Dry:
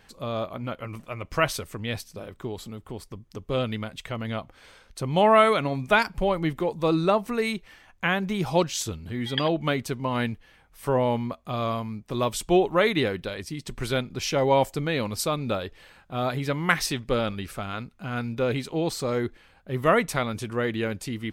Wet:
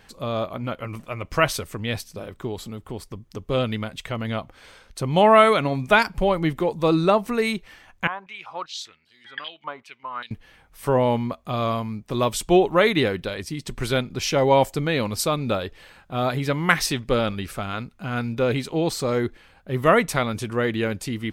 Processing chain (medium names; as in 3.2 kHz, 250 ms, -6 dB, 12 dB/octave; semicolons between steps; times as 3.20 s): 8.07–10.31 s: step-sequenced band-pass 5.1 Hz 980–5000 Hz; trim +3.5 dB